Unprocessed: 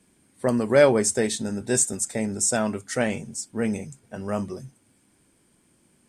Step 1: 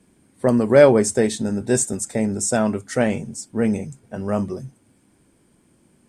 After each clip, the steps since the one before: tilt shelf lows +3.5 dB, about 1300 Hz; gain +2.5 dB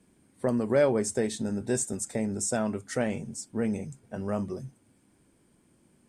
compressor 1.5:1, threshold -24 dBFS, peak gain reduction 6.5 dB; gain -5.5 dB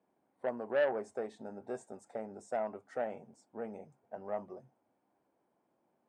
band-pass 750 Hz, Q 2.5; core saturation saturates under 880 Hz

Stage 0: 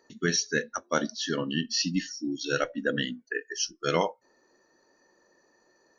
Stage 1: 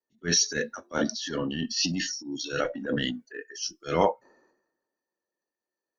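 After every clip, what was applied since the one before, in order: gate with hold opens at -56 dBFS; transient shaper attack -9 dB, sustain +8 dB; three-band expander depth 70%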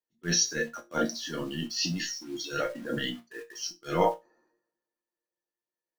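in parallel at -4 dB: bit-crush 7-bit; on the sum: resonator bank A#2 sus4, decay 0.2 s; gain +5 dB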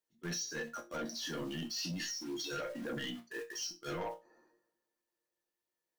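in parallel at +1.5 dB: limiter -20.5 dBFS, peak gain reduction 9 dB; on the sum: compressor 4:1, threshold -30 dBFS, peak gain reduction 12.5 dB; soft clip -29 dBFS, distortion -13 dB; gain -4.5 dB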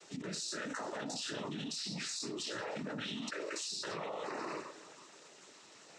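resonator 210 Hz, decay 0.22 s, harmonics all, mix 90%; noise vocoder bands 12; fast leveller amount 100%; gain +7 dB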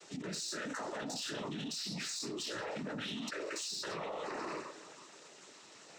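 soft clip -33.5 dBFS, distortion -20 dB; gain +1.5 dB

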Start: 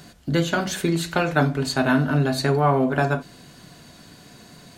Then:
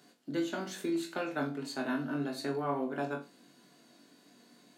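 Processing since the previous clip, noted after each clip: ladder high-pass 210 Hz, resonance 40%; on a send: flutter echo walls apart 3.6 m, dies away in 0.24 s; on the sum: gain -8 dB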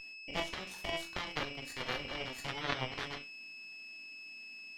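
whine 2600 Hz -37 dBFS; added harmonics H 3 -8 dB, 4 -17 dB, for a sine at -19 dBFS; gain +5 dB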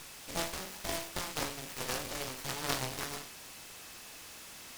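spectral trails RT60 0.46 s; noise-modulated delay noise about 3200 Hz, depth 0.11 ms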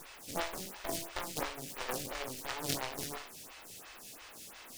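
photocell phaser 2.9 Hz; gain +2 dB

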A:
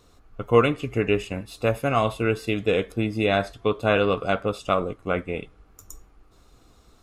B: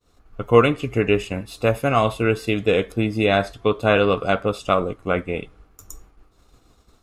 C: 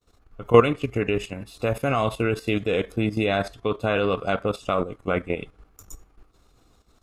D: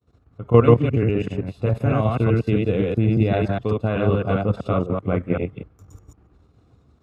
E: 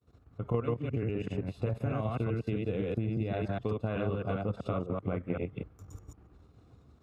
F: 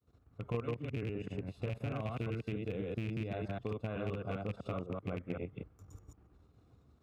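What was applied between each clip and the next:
expander -49 dBFS; gain +3.5 dB
level quantiser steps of 12 dB; gain +2 dB
reverse delay 0.128 s, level -0.5 dB; HPF 80 Hz 24 dB/oct; RIAA curve playback; gain -4 dB
compressor 5:1, threshold -27 dBFS, peak gain reduction 17.5 dB; gain -2.5 dB
rattling part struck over -29 dBFS, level -30 dBFS; gain -6 dB

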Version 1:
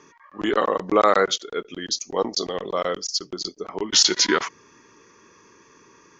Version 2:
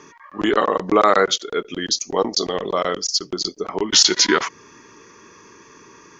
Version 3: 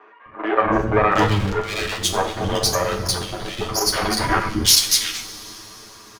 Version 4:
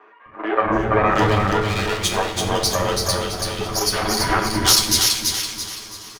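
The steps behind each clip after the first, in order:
in parallel at -1.5 dB: compressor, threshold -27 dBFS, peak gain reduction 14.5 dB; on the sum: notch 520 Hz, Q 17; gain +1.5 dB
minimum comb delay 9.2 ms; three bands offset in time mids, lows, highs 0.26/0.72 s, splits 350/2300 Hz; two-slope reverb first 0.46 s, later 4 s, from -18 dB, DRR 4.5 dB; gain +1.5 dB
feedback echo 0.333 s, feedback 40%, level -3.5 dB; gain -1 dB

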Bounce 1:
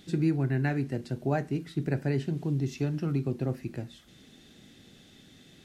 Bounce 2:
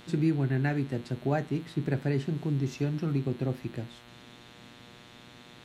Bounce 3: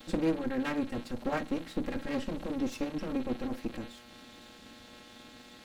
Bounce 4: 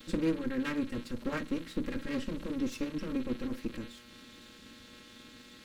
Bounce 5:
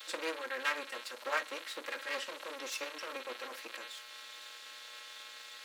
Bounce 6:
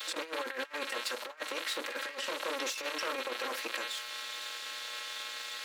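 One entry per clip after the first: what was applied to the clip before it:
buzz 120 Hz, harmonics 36, -54 dBFS -2 dB/oct
minimum comb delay 3.7 ms; gain +1 dB
bell 740 Hz -14.5 dB 0.49 oct
HPF 630 Hz 24 dB/oct; gain +6 dB
negative-ratio compressor -42 dBFS, ratio -0.5; gain +6 dB

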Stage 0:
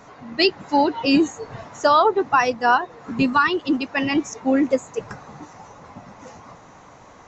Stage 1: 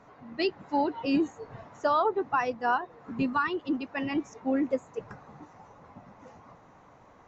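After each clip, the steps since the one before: LPF 2000 Hz 6 dB/oct; gain -8.5 dB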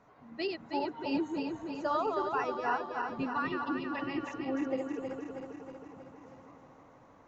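regenerating reverse delay 0.159 s, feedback 77%, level -4.5 dB; gain -7 dB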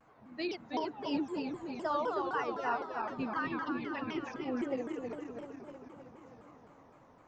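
shaped vibrato saw down 3.9 Hz, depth 250 cents; gain -2 dB

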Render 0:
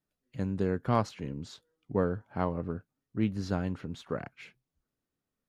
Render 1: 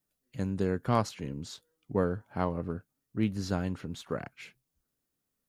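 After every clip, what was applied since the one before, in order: high shelf 6000 Hz +11.5 dB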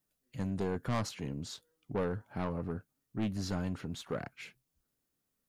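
soft clip -27.5 dBFS, distortion -7 dB

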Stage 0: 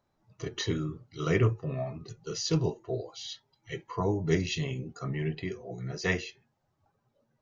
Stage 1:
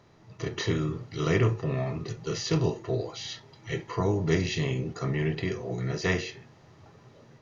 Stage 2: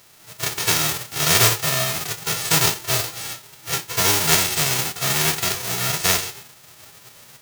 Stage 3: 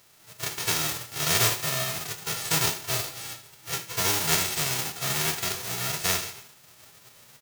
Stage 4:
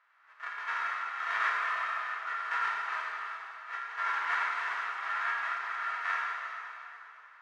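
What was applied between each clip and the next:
per-bin compression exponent 0.6; high shelf 5300 Hz -4.5 dB; AGC gain up to 4.5 dB; gain -5 dB
spectral whitening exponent 0.1; gain +7.5 dB
feedback echo 75 ms, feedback 47%, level -14 dB; gain -7 dB
Butterworth band-pass 1400 Hz, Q 1.7; plate-style reverb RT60 3.1 s, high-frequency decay 0.85×, DRR -3 dB

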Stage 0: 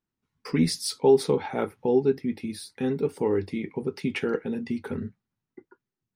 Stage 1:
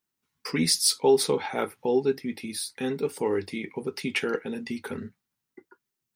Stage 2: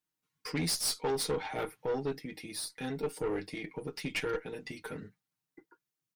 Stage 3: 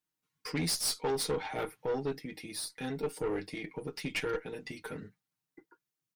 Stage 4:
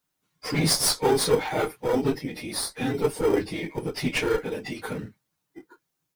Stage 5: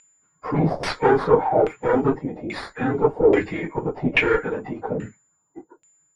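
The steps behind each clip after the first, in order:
tilt +2.5 dB/oct; gain +1.5 dB
comb 6.5 ms, depth 88%; tube stage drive 21 dB, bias 0.5; gain -5.5 dB
nothing audible
phase scrambler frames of 50 ms; in parallel at -11 dB: sample-and-hold 16×; on the sum: gain +8.5 dB
whine 7100 Hz -39 dBFS; LFO low-pass saw down 1.2 Hz 580–2500 Hz; gain +3.5 dB

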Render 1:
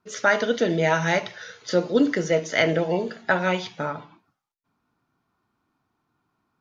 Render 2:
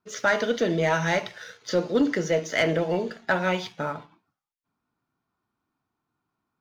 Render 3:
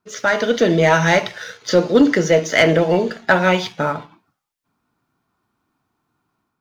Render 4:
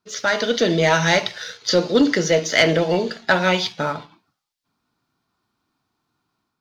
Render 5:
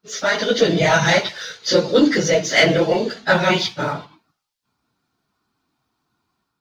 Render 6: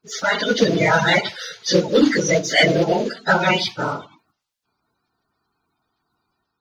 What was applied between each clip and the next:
sample leveller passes 1; gain -5 dB
AGC gain up to 5.5 dB; gain +4 dB
bell 4400 Hz +9.5 dB 1.1 oct; gain -3.5 dB
phase scrambler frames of 50 ms; gain +1.5 dB
bin magnitudes rounded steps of 30 dB

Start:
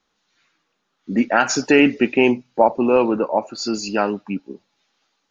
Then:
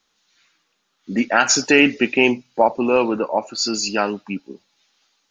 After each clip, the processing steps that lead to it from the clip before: high shelf 2100 Hz +10 dB; gain -2 dB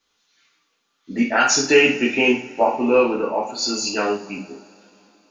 reverb, pre-delay 3 ms, DRR -4 dB; gain -6 dB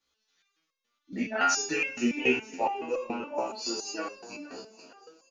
frequency-shifting echo 0.465 s, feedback 50%, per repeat +32 Hz, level -15 dB; stepped resonator 7.1 Hz 65–540 Hz

